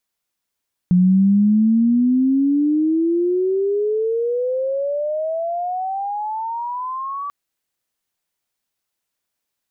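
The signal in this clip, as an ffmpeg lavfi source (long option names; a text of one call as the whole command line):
ffmpeg -f lavfi -i "aevalsrc='pow(10,(-10-14*t/6.39)/20)*sin(2*PI*177*6.39/(32.5*log(2)/12)*(exp(32.5*log(2)/12*t/6.39)-1))':duration=6.39:sample_rate=44100" out.wav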